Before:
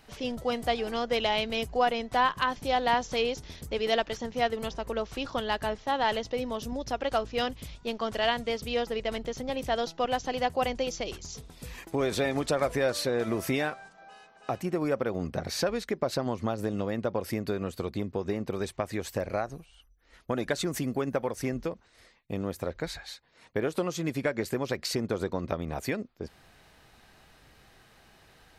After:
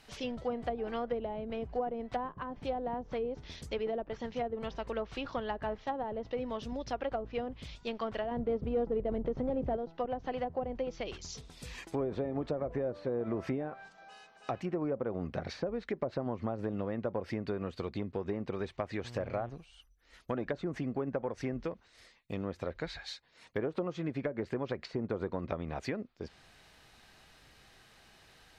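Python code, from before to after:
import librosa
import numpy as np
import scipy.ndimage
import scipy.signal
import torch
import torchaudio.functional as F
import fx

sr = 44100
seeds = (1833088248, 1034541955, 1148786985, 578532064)

p1 = fx.leveller(x, sr, passes=2, at=(8.31, 9.77))
p2 = fx.peak_eq(p1, sr, hz=4300.0, db=5.0, octaves=2.6)
p3 = 10.0 ** (-23.5 / 20.0) * np.tanh(p2 / 10.0 ** (-23.5 / 20.0))
p4 = p2 + F.gain(torch.from_numpy(p3), -6.5).numpy()
p5 = fx.env_lowpass_down(p4, sr, base_hz=530.0, full_db=-20.0)
p6 = fx.dmg_buzz(p5, sr, base_hz=120.0, harmonics=30, level_db=-40.0, tilt_db=-8, odd_only=False, at=(19.03, 19.49), fade=0.02)
y = F.gain(torch.from_numpy(p6), -7.5).numpy()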